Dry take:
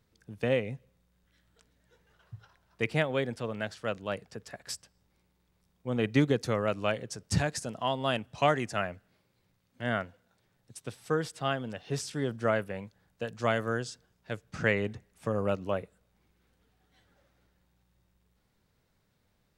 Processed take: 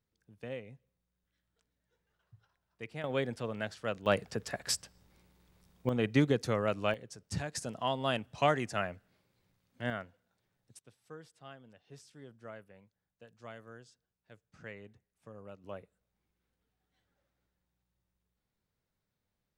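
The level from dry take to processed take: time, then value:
−14 dB
from 0:03.04 −2.5 dB
from 0:04.06 +6 dB
from 0:05.89 −2 dB
from 0:06.94 −9 dB
from 0:07.55 −2.5 dB
from 0:09.90 −8.5 dB
from 0:10.79 −20 dB
from 0:15.64 −13 dB

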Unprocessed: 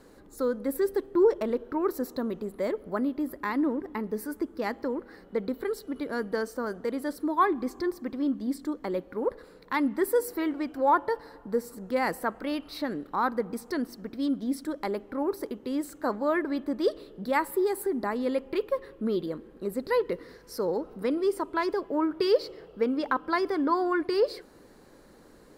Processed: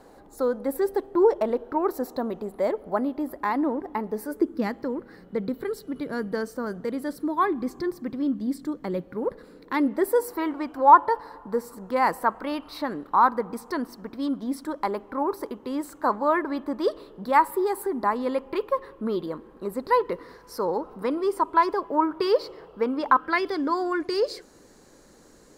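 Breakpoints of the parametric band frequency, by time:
parametric band +11.5 dB 0.79 octaves
0:04.23 770 Hz
0:04.72 150 Hz
0:09.27 150 Hz
0:10.28 1,000 Hz
0:23.12 1,000 Hz
0:23.66 6,700 Hz

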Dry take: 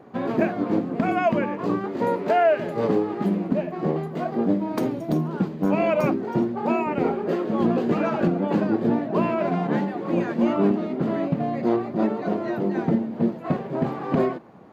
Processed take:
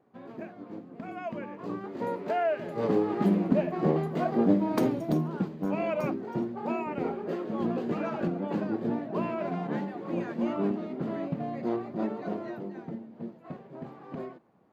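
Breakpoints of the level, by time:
0:00.85 −19 dB
0:01.97 −9 dB
0:02.61 −9 dB
0:03.14 −1 dB
0:04.86 −1 dB
0:05.65 −8.5 dB
0:12.39 −8.5 dB
0:12.81 −17 dB

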